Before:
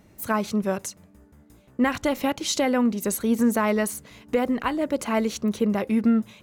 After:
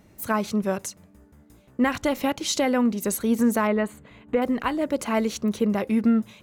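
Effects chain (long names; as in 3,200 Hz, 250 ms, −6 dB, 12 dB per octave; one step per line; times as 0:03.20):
0:03.67–0:04.42: moving average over 8 samples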